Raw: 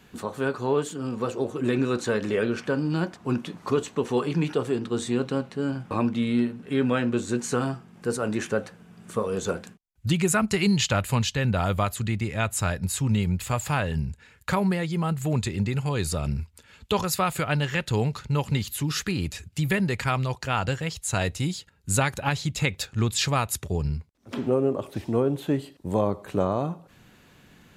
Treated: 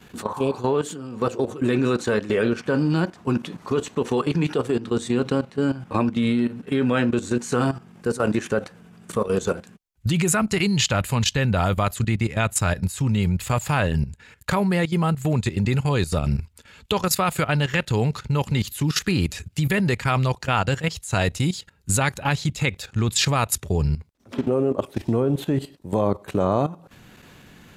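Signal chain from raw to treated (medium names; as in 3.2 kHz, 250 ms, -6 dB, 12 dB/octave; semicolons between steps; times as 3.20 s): 25.01–25.76 s: bass shelf 120 Hz +6.5 dB; level held to a coarse grid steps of 14 dB; 0.30–0.58 s: spectral replace 700–2200 Hz both; trim +8 dB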